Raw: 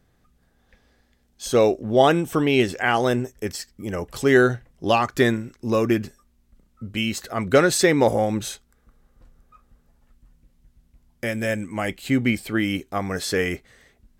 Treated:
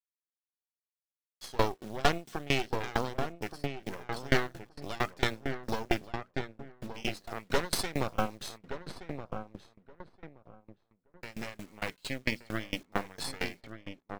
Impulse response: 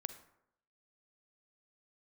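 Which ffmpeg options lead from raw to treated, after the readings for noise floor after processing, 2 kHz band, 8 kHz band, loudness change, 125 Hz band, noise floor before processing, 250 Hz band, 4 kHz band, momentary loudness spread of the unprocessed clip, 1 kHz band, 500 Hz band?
under -85 dBFS, -10.5 dB, -12.0 dB, -13.0 dB, -11.0 dB, -63 dBFS, -15.0 dB, -7.5 dB, 14 LU, -10.0 dB, -15.0 dB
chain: -filter_complex "[0:a]highpass=f=120:w=0.5412,highpass=f=120:w=1.3066,aemphasis=mode=reproduction:type=50fm,bandreject=f=60:t=h:w=6,bandreject=f=120:t=h:w=6,bandreject=f=180:t=h:w=6,bandreject=f=240:t=h:w=6,agate=range=0.0224:threshold=0.00562:ratio=3:detection=peak,equalizer=f=4600:t=o:w=0.95:g=13,asplit=2[s0][s1];[s1]acompressor=threshold=0.0355:ratio=12,volume=1[s2];[s0][s2]amix=inputs=2:normalize=0,flanger=delay=2.2:depth=7:regen=81:speed=0.95:shape=triangular,acrusher=bits=6:mix=0:aa=0.000001,flanger=delay=1.1:depth=1.7:regen=66:speed=0.23:shape=sinusoidal,aeval=exprs='0.335*(cos(1*acos(clip(val(0)/0.335,-1,1)))-cos(1*PI/2))+0.0335*(cos(3*acos(clip(val(0)/0.335,-1,1)))-cos(3*PI/2))+0.0944*(cos(6*acos(clip(val(0)/0.335,-1,1)))-cos(6*PI/2))':c=same,asplit=2[s3][s4];[s4]adelay=1173,lowpass=f=1600:p=1,volume=0.501,asplit=2[s5][s6];[s6]adelay=1173,lowpass=f=1600:p=1,volume=0.26,asplit=2[s7][s8];[s8]adelay=1173,lowpass=f=1600:p=1,volume=0.26[s9];[s3][s5][s7][s9]amix=inputs=4:normalize=0,aeval=exprs='val(0)*pow(10,-25*if(lt(mod(4.4*n/s,1),2*abs(4.4)/1000),1-mod(4.4*n/s,1)/(2*abs(4.4)/1000),(mod(4.4*n/s,1)-2*abs(4.4)/1000)/(1-2*abs(4.4)/1000))/20)':c=same"

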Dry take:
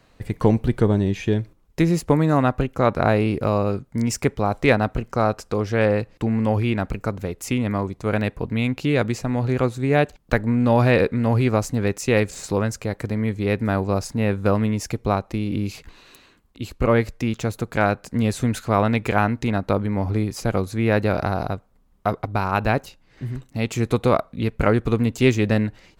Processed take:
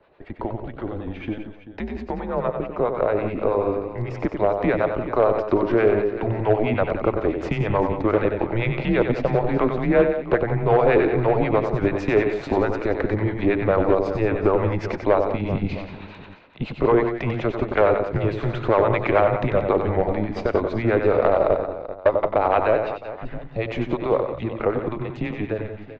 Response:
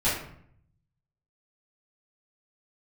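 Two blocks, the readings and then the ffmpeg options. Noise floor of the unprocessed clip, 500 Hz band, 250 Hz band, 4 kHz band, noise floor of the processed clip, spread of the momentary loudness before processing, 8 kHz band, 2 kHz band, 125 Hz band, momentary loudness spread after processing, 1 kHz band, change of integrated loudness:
-57 dBFS, +3.0 dB, -3.0 dB, -6.5 dB, -40 dBFS, 8 LU, under -20 dB, -2.0 dB, -5.0 dB, 12 LU, +0.5 dB, 0.0 dB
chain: -filter_complex "[0:a]aeval=exprs='if(lt(val(0),0),0.708*val(0),val(0))':c=same,acompressor=threshold=0.0631:ratio=6,highpass=f=210:p=1,afreqshift=-110,acrossover=split=720[s0][s1];[s0]aeval=exprs='val(0)*(1-0.7/2+0.7/2*cos(2*PI*9.2*n/s))':c=same[s2];[s1]aeval=exprs='val(0)*(1-0.7/2-0.7/2*cos(2*PI*9.2*n/s))':c=same[s3];[s2][s3]amix=inputs=2:normalize=0,equalizer=f=580:w=0.82:g=11.5,aecho=1:1:94|168|182|387|663:0.447|0.141|0.266|0.2|0.106,dynaudnorm=f=910:g=9:m=3.16,asoftclip=type=hard:threshold=0.355,lowpass=f=3300:w=0.5412,lowpass=f=3300:w=1.3066"

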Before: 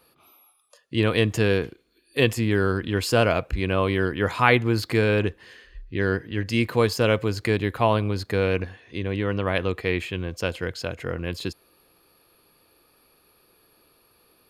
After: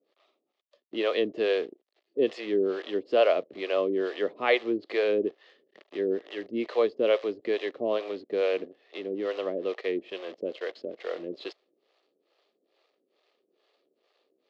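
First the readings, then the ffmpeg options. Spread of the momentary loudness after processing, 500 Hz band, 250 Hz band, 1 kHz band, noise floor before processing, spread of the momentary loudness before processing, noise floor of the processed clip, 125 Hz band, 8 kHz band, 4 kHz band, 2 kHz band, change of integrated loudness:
12 LU, -1.5 dB, -7.5 dB, -9.0 dB, -62 dBFS, 10 LU, -79 dBFS, under -25 dB, under -20 dB, -7.5 dB, -9.5 dB, -5.0 dB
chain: -filter_complex "[0:a]acrusher=bits=7:dc=4:mix=0:aa=0.000001,highpass=f=280:w=0.5412,highpass=f=280:w=1.3066,equalizer=f=400:t=q:w=4:g=5,equalizer=f=590:t=q:w=4:g=7,equalizer=f=940:t=q:w=4:g=-8,equalizer=f=1500:t=q:w=4:g=-10,equalizer=f=2400:t=q:w=4:g=-5,lowpass=f=4000:w=0.5412,lowpass=f=4000:w=1.3066,acrossover=split=450[s0][s1];[s0]aeval=exprs='val(0)*(1-1/2+1/2*cos(2*PI*2.3*n/s))':c=same[s2];[s1]aeval=exprs='val(0)*(1-1/2-1/2*cos(2*PI*2.3*n/s))':c=same[s3];[s2][s3]amix=inputs=2:normalize=0"

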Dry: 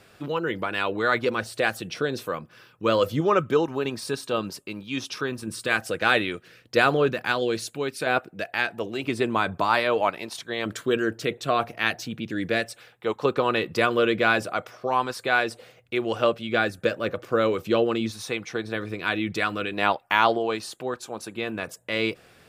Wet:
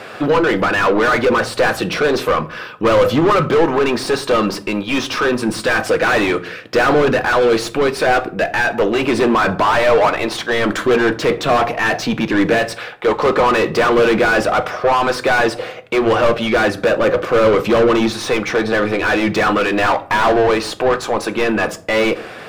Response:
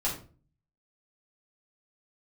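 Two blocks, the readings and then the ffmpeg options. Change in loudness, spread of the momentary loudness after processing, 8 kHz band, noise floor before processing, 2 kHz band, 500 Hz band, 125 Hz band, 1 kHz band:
+10.0 dB, 6 LU, +9.5 dB, -56 dBFS, +8.5 dB, +11.0 dB, +9.0 dB, +9.5 dB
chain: -filter_complex "[0:a]asplit=2[s0][s1];[s1]highpass=f=720:p=1,volume=56.2,asoftclip=type=tanh:threshold=0.668[s2];[s0][s2]amix=inputs=2:normalize=0,lowpass=f=1200:p=1,volume=0.501,asplit=2[s3][s4];[1:a]atrim=start_sample=2205[s5];[s4][s5]afir=irnorm=-1:irlink=0,volume=0.158[s6];[s3][s6]amix=inputs=2:normalize=0,volume=0.794"

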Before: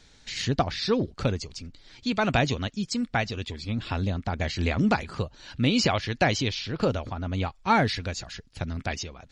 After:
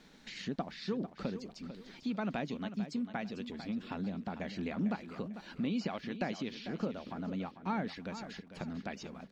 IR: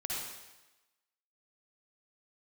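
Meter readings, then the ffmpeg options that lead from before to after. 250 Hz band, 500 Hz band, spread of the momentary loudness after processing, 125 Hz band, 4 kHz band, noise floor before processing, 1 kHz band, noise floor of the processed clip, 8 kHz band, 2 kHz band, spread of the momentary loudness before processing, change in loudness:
-7.5 dB, -12.0 dB, 8 LU, -15.0 dB, -16.5 dB, -56 dBFS, -14.0 dB, -58 dBFS, under -15 dB, -15.0 dB, 11 LU, -11.5 dB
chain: -af "lowshelf=f=140:t=q:w=3:g=-10.5,acompressor=threshold=0.00501:ratio=2,aeval=exprs='val(0)*gte(abs(val(0)),0.00106)':c=same,lowpass=f=2100:p=1,aecho=1:1:447|894|1341:0.266|0.0878|0.029,volume=1.12"

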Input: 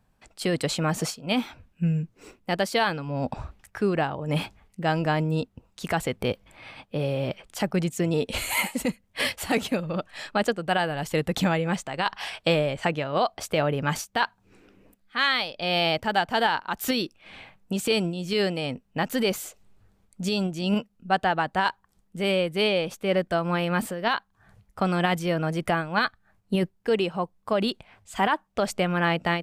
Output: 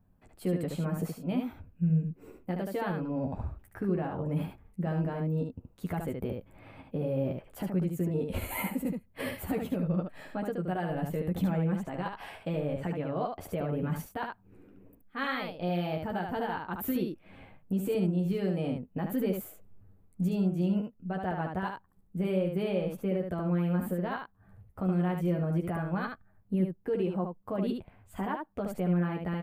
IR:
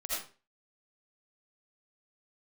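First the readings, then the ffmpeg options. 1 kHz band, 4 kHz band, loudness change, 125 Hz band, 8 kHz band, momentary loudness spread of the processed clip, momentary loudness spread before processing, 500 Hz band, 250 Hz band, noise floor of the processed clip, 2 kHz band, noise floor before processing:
-11.0 dB, -19.5 dB, -6.0 dB, -1.5 dB, -15.0 dB, 10 LU, 8 LU, -7.0 dB, -2.0 dB, -63 dBFS, -14.0 dB, -67 dBFS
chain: -af "firequalizer=gain_entry='entry(200,0);entry(760,-8);entry(3500,-20);entry(5400,-24);entry(14000,-3)':delay=0.05:min_phase=1,alimiter=limit=0.0631:level=0:latency=1:release=120,aecho=1:1:11|74:0.596|0.631"

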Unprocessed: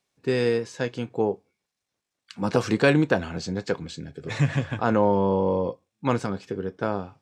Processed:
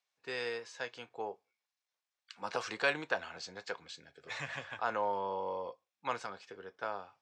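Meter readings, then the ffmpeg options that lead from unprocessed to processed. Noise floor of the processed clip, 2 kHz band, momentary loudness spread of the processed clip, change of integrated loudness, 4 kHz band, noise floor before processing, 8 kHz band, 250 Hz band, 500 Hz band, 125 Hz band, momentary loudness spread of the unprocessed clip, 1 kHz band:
under -85 dBFS, -6.5 dB, 13 LU, -13.0 dB, -7.0 dB, -84 dBFS, -9.5 dB, -25.0 dB, -15.0 dB, -28.0 dB, 11 LU, -8.0 dB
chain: -filter_complex "[0:a]acrossover=split=600 7500:gain=0.0794 1 0.2[s0][s1][s2];[s0][s1][s2]amix=inputs=3:normalize=0,volume=0.473"

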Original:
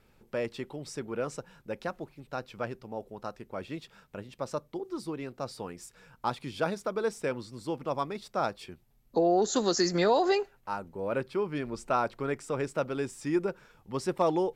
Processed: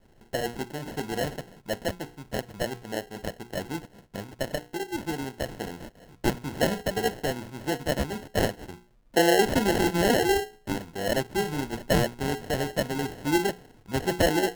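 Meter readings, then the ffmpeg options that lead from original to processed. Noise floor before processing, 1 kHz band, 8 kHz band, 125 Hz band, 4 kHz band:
-64 dBFS, +2.0 dB, +5.5 dB, +7.5 dB, +7.5 dB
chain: -af "bandreject=f=60:t=h:w=6,bandreject=f=120:t=h:w=6,bandreject=f=180:t=h:w=6,bandreject=f=240:t=h:w=6,bandreject=f=300:t=h:w=6,bandreject=f=360:t=h:w=6,bandreject=f=420:t=h:w=6,bandreject=f=480:t=h:w=6,adynamicequalizer=threshold=0.00794:dfrequency=560:dqfactor=1.2:tfrequency=560:tqfactor=1.2:attack=5:release=100:ratio=0.375:range=3:mode=cutabove:tftype=bell,acrusher=samples=37:mix=1:aa=0.000001,volume=1.88"

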